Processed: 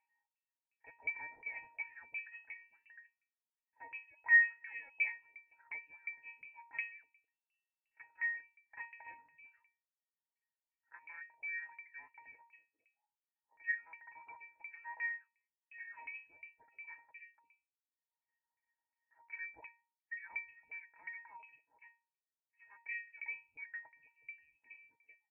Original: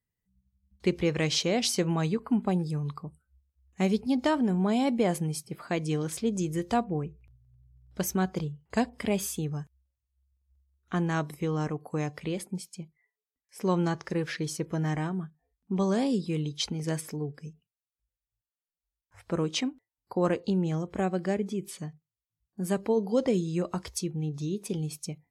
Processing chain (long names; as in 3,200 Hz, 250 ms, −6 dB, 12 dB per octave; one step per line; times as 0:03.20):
comb filter 5.6 ms, depth 61%
upward compression, threshold −48 dBFS
resonances in every octave A#, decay 0.41 s
auto-filter high-pass saw up 2.8 Hz 560–2,100 Hz
voice inversion scrambler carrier 2,800 Hz
level +6.5 dB